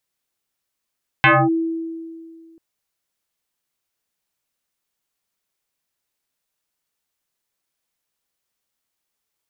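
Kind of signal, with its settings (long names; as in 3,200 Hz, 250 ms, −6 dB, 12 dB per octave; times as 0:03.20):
two-operator FM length 1.34 s, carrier 328 Hz, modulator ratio 1.41, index 5.5, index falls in 0.25 s linear, decay 2.11 s, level −8 dB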